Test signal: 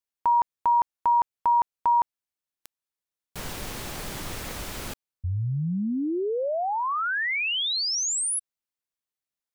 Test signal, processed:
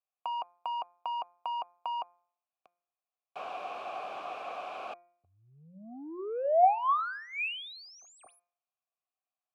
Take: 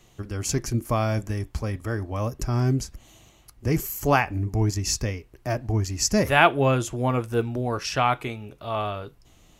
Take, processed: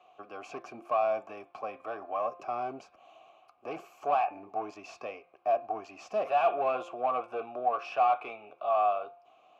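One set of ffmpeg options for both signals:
ffmpeg -i in.wav -filter_complex "[0:a]asplit=2[link_01][link_02];[link_02]highpass=frequency=720:poles=1,volume=28dB,asoftclip=type=tanh:threshold=-2dB[link_03];[link_01][link_03]amix=inputs=2:normalize=0,lowpass=frequency=1500:poles=1,volume=-6dB,acrossover=split=130|6400[link_04][link_05][link_06];[link_04]acompressor=threshold=-38dB:ratio=6:release=101[link_07];[link_07][link_05][link_06]amix=inputs=3:normalize=0,asplit=3[link_08][link_09][link_10];[link_08]bandpass=frequency=730:width_type=q:width=8,volume=0dB[link_11];[link_09]bandpass=frequency=1090:width_type=q:width=8,volume=-6dB[link_12];[link_10]bandpass=frequency=2440:width_type=q:width=8,volume=-9dB[link_13];[link_11][link_12][link_13]amix=inputs=3:normalize=0,bandreject=frequency=174.8:width_type=h:width=4,bandreject=frequency=349.6:width_type=h:width=4,bandreject=frequency=524.4:width_type=h:width=4,bandreject=frequency=699.2:width_type=h:width=4,bandreject=frequency=874:width_type=h:width=4,bandreject=frequency=1048.8:width_type=h:width=4,bandreject=frequency=1223.6:width_type=h:width=4,bandreject=frequency=1398.4:width_type=h:width=4,bandreject=frequency=1573.2:width_type=h:width=4,bandreject=frequency=1748:width_type=h:width=4,bandreject=frequency=1922.8:width_type=h:width=4,bandreject=frequency=2097.6:width_type=h:width=4,bandreject=frequency=2272.4:width_type=h:width=4,bandreject=frequency=2447.2:width_type=h:width=4,volume=-7dB" out.wav

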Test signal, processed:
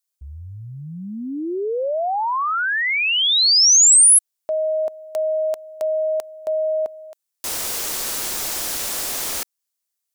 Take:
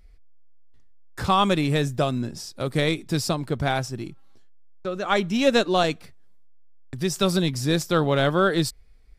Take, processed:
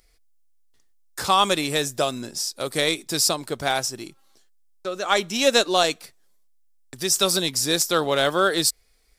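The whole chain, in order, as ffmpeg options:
ffmpeg -i in.wav -af "bass=frequency=250:gain=-14,treble=frequency=4000:gain=11,volume=1.5dB" out.wav

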